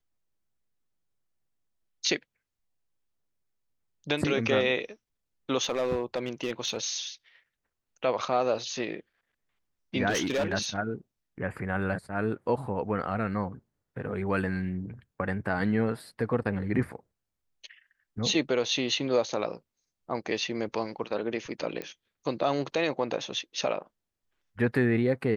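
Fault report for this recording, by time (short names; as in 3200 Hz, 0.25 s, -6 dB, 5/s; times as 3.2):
5.63–6.78 clipped -23 dBFS
10.09–10.53 clipped -23.5 dBFS
21.82 pop -21 dBFS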